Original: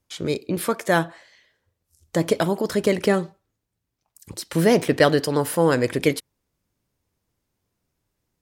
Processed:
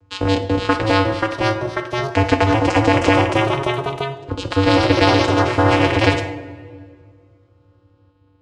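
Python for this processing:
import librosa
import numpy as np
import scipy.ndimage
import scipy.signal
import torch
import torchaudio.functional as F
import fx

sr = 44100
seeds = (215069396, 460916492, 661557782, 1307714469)

p1 = fx.spec_ripple(x, sr, per_octave=0.59, drift_hz=-0.28, depth_db=11)
p2 = scipy.signal.sosfilt(scipy.signal.butter(2, 3300.0, 'lowpass', fs=sr, output='sos'), p1)
p3 = np.where(np.abs(p2) >= 10.0 ** (-27.5 / 20.0), p2, 0.0)
p4 = p2 + (p3 * librosa.db_to_amplitude(-10.0))
p5 = fx.vocoder(p4, sr, bands=8, carrier='square', carrier_hz=96.9)
p6 = fx.echo_pitch(p5, sr, ms=609, semitones=2, count=3, db_per_echo=-6.0)
p7 = fx.rev_double_slope(p6, sr, seeds[0], early_s=0.58, late_s=1.9, knee_db=-20, drr_db=8.0)
p8 = fx.spectral_comp(p7, sr, ratio=2.0)
y = p8 * librosa.db_to_amplitude(1.5)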